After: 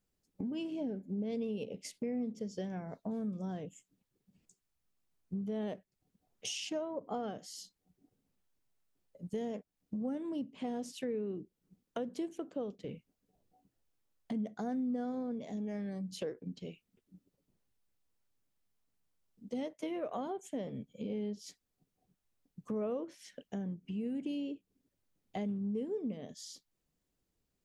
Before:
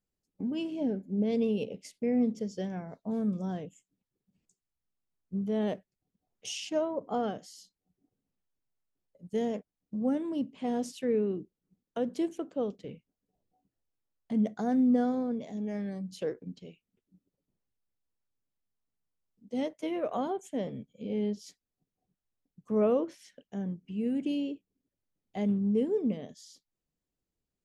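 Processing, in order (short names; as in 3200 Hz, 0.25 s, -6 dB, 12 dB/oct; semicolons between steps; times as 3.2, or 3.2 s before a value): compressor 3:1, threshold -44 dBFS, peak gain reduction 16 dB; gain +5 dB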